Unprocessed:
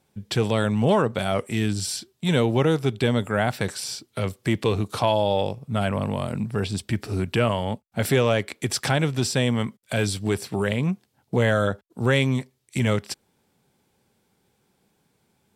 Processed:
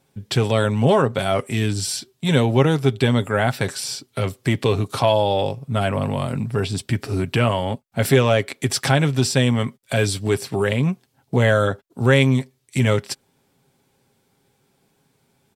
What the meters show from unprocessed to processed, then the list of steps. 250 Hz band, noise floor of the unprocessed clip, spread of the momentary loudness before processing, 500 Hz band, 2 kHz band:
+3.0 dB, -70 dBFS, 8 LU, +3.5 dB, +4.0 dB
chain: comb 7.4 ms, depth 39%; trim +3 dB

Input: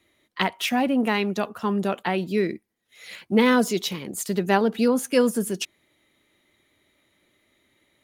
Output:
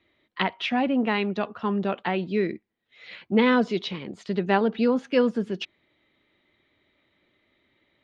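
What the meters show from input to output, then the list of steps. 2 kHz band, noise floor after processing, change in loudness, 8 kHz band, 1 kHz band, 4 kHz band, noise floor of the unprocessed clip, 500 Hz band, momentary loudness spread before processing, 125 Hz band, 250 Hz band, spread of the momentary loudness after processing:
-1.5 dB, -74 dBFS, -1.5 dB, under -20 dB, -1.5 dB, -3.0 dB, -72 dBFS, -1.5 dB, 11 LU, -1.5 dB, -1.5 dB, 14 LU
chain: low-pass 4 kHz 24 dB/octave; trim -1.5 dB

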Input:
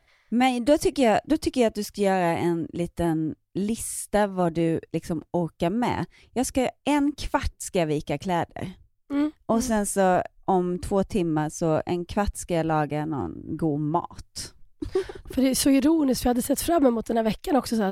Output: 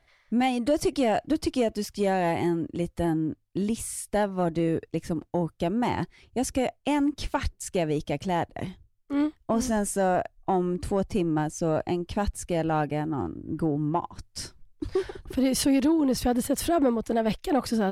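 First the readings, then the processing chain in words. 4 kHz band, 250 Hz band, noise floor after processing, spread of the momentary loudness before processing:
-2.0 dB, -2.0 dB, -65 dBFS, 9 LU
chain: treble shelf 12 kHz -7.5 dB; in parallel at +1 dB: peak limiter -15 dBFS, peak gain reduction 8 dB; on the sum: saturation -6 dBFS, distortion -24 dB; trim -7 dB

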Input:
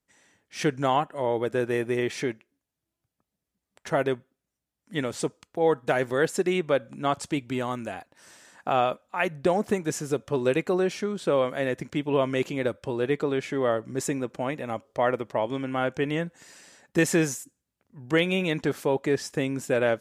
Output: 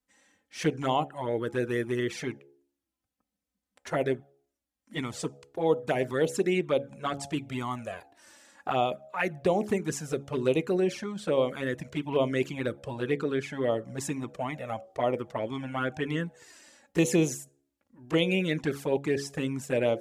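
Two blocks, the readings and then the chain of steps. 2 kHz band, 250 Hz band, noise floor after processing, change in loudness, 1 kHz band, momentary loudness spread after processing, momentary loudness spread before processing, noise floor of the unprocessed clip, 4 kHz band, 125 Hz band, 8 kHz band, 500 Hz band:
-4.0 dB, -2.0 dB, under -85 dBFS, -3.0 dB, -4.0 dB, 9 LU, 7 LU, under -85 dBFS, -2.0 dB, -1.0 dB, -3.0 dB, -3.0 dB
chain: rattle on loud lows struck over -27 dBFS, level -34 dBFS; de-hum 70.07 Hz, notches 12; touch-sensitive flanger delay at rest 3.9 ms, full sweep at -19.5 dBFS

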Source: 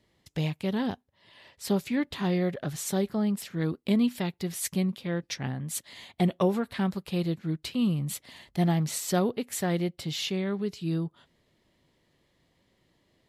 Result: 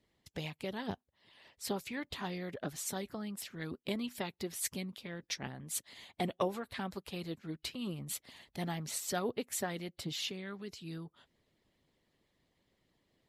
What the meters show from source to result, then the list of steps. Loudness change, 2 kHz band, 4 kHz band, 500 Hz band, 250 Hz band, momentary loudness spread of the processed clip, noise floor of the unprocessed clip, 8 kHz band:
-10.0 dB, -5.0 dB, -5.0 dB, -9.0 dB, -13.5 dB, 8 LU, -71 dBFS, -4.5 dB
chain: harmonic-percussive split harmonic -12 dB; trim -3 dB

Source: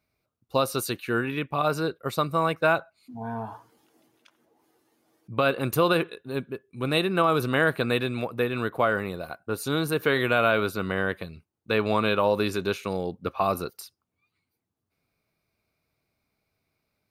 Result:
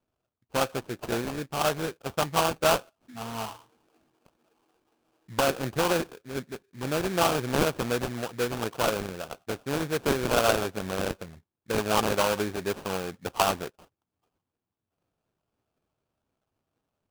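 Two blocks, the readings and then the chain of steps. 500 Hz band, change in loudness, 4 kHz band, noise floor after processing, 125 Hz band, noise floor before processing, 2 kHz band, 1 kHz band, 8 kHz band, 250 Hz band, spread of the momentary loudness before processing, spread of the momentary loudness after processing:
-2.5 dB, -2.0 dB, +0.5 dB, under -85 dBFS, -3.5 dB, -82 dBFS, -5.0 dB, -1.5 dB, +6.5 dB, -3.0 dB, 12 LU, 12 LU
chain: LFO low-pass sine 4 Hz 750–3300 Hz; sample-rate reducer 2 kHz, jitter 20%; trim -4.5 dB

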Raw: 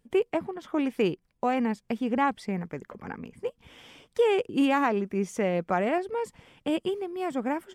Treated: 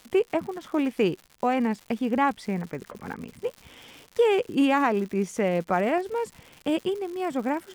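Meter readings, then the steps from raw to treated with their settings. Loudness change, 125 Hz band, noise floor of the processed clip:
+2.0 dB, +2.0 dB, -58 dBFS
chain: crackle 190 per s -38 dBFS; trim +2 dB

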